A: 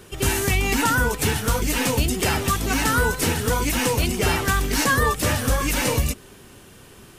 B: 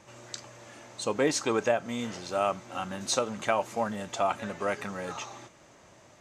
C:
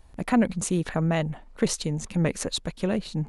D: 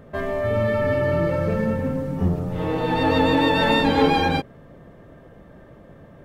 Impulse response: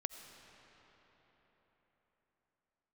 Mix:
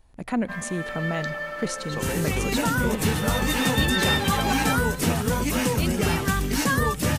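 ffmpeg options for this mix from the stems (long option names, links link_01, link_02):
-filter_complex "[0:a]equalizer=frequency=180:width_type=o:width=1.2:gain=9,dynaudnorm=framelen=140:gausssize=9:maxgain=11.5dB,adelay=1800,volume=-9dB[link_01];[1:a]lowpass=3700,acompressor=threshold=-32dB:ratio=6,adelay=900,volume=2dB[link_02];[2:a]volume=-7dB,asplit=2[link_03][link_04];[link_04]volume=-6.5dB[link_05];[3:a]highpass=1100,aecho=1:1:3.9:0.75,adelay=350,volume=-3.5dB[link_06];[4:a]atrim=start_sample=2205[link_07];[link_05][link_07]afir=irnorm=-1:irlink=0[link_08];[link_01][link_02][link_03][link_06][link_08]amix=inputs=5:normalize=0,bandreject=frequency=60:width_type=h:width=6,bandreject=frequency=120:width_type=h:width=6"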